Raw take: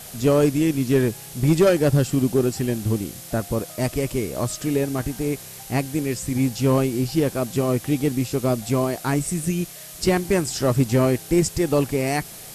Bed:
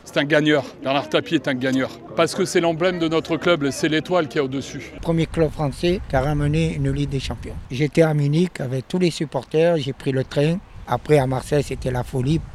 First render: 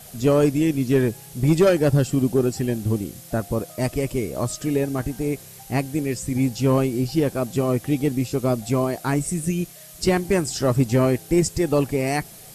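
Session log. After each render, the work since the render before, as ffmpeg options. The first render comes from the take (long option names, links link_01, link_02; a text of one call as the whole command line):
ffmpeg -i in.wav -af "afftdn=noise_reduction=6:noise_floor=-40" out.wav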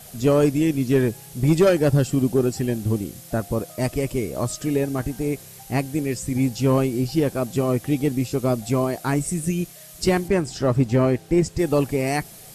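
ffmpeg -i in.wav -filter_complex "[0:a]asettb=1/sr,asplit=3[link_01][link_02][link_03];[link_01]atrim=end=10.284[link_04];[link_02]atrim=start=10.28:end=11.59,asetpts=PTS-STARTPTS,afade=type=in:duration=0.004:curve=qsin,afade=type=out:start_time=1.306:duration=0.004:curve=qsin,aemphasis=mode=reproduction:type=50kf[link_05];[link_03]atrim=start=11.586[link_06];[link_04][link_05]acrossfade=duration=0.004:curve1=hsin:curve2=qsin[link_07];[link_07][link_06]acrossfade=duration=0.004:curve1=qsin:curve2=hsin" out.wav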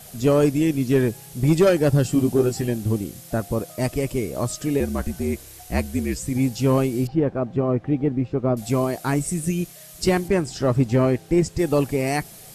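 ffmpeg -i in.wav -filter_complex "[0:a]asettb=1/sr,asplit=3[link_01][link_02][link_03];[link_01]atrim=end=2.034[link_04];[link_02]atrim=start=2.03:end=2.68,asetpts=PTS-STARTPTS,afade=type=in:duration=0.004:curve=qsin,afade=type=out:start_time=0.646:duration=0.004:curve=qsin,asplit=2[link_05][link_06];[link_06]adelay=18,volume=-5dB[link_07];[link_05][link_07]amix=inputs=2:normalize=0,atrim=end_sample=28665[link_08];[link_03]atrim=start=2.676[link_09];[link_04][link_08]acrossfade=duration=0.004:curve1=hsin:curve2=qsin[link_10];[link_10][link_09]acrossfade=duration=0.004:curve1=qsin:curve2=hsin,asettb=1/sr,asplit=3[link_11][link_12][link_13];[link_11]atrim=end=4.804[link_14];[link_12]atrim=start=4.8:end=6.19,asetpts=PTS-STARTPTS,afade=type=in:duration=0.004:curve=qsin,afade=type=out:start_time=1.386:duration=0.004:curve=qsin,afreqshift=-59[link_15];[link_13]atrim=start=6.186[link_16];[link_14][link_15]acrossfade=duration=0.004:curve1=hsin:curve2=qsin[link_17];[link_17][link_16]acrossfade=duration=0.004:curve1=qsin:curve2=hsin,asettb=1/sr,asplit=3[link_18][link_19][link_20];[link_18]atrim=end=7.074[link_21];[link_19]atrim=start=7.07:end=8.57,asetpts=PTS-STARTPTS,afade=type=in:duration=0.004:curve=qsin,afade=type=out:start_time=1.496:duration=0.004:curve=qsin,lowpass=1500[link_22];[link_20]atrim=start=8.566[link_23];[link_21][link_22]acrossfade=duration=0.004:curve1=hsin:curve2=qsin[link_24];[link_24][link_23]acrossfade=duration=0.004:curve1=qsin:curve2=hsin" out.wav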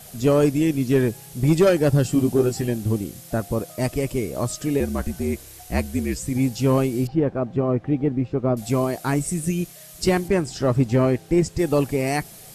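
ffmpeg -i in.wav -af anull out.wav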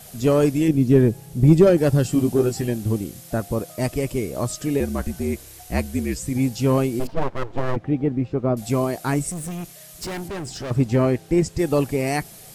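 ffmpeg -i in.wav -filter_complex "[0:a]asettb=1/sr,asplit=3[link_01][link_02][link_03];[link_01]atrim=end=0.684[link_04];[link_02]atrim=start=0.68:end=1.78,asetpts=PTS-STARTPTS,afade=type=in:duration=0.004:curve=qsin,afade=type=out:start_time=1.096:duration=0.004:curve=qsin,tiltshelf=frequency=690:gain=6[link_05];[link_03]atrim=start=1.776[link_06];[link_04][link_05]acrossfade=duration=0.004:curve1=hsin:curve2=qsin[link_07];[link_07][link_06]acrossfade=duration=0.004:curve1=qsin:curve2=hsin,asplit=3[link_08][link_09][link_10];[link_08]afade=type=out:start_time=6.99:duration=0.02[link_11];[link_09]aeval=exprs='abs(val(0))':channel_layout=same,afade=type=in:start_time=6.99:duration=0.02,afade=type=out:start_time=7.75:duration=0.02[link_12];[link_10]afade=type=in:start_time=7.75:duration=0.02[link_13];[link_11][link_12][link_13]amix=inputs=3:normalize=0,asettb=1/sr,asplit=3[link_14][link_15][link_16];[link_14]atrim=end=9.314[link_17];[link_15]atrim=start=9.31:end=10.71,asetpts=PTS-STARTPTS,afade=type=in:duration=0.004:curve=qsin,afade=type=out:start_time=1.396:duration=0.004:curve=qsin,volume=28dB,asoftclip=hard,volume=-28dB[link_18];[link_16]atrim=start=10.706[link_19];[link_17][link_18]acrossfade=duration=0.004:curve1=hsin:curve2=qsin[link_20];[link_20][link_19]acrossfade=duration=0.004:curve1=qsin:curve2=hsin" out.wav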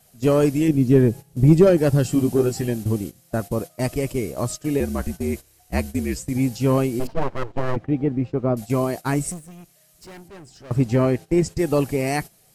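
ffmpeg -i in.wav -af "agate=range=-14dB:threshold=-29dB:ratio=16:detection=peak,bandreject=frequency=3500:width=23" out.wav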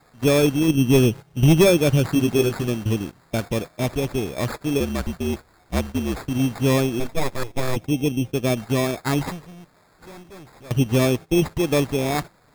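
ffmpeg -i in.wav -af "acrusher=samples=15:mix=1:aa=0.000001,volume=9dB,asoftclip=hard,volume=-9dB" out.wav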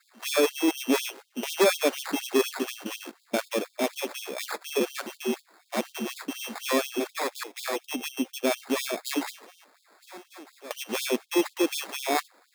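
ffmpeg -i in.wav -af "asoftclip=type=hard:threshold=-16dB,afftfilt=real='re*gte(b*sr/1024,200*pow(3000/200,0.5+0.5*sin(2*PI*4.1*pts/sr)))':imag='im*gte(b*sr/1024,200*pow(3000/200,0.5+0.5*sin(2*PI*4.1*pts/sr)))':win_size=1024:overlap=0.75" out.wav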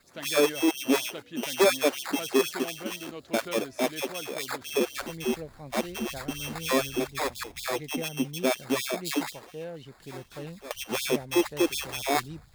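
ffmpeg -i in.wav -i bed.wav -filter_complex "[1:a]volume=-21.5dB[link_01];[0:a][link_01]amix=inputs=2:normalize=0" out.wav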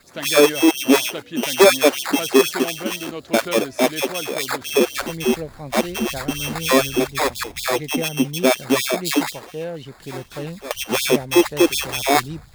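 ffmpeg -i in.wav -af "volume=9.5dB" out.wav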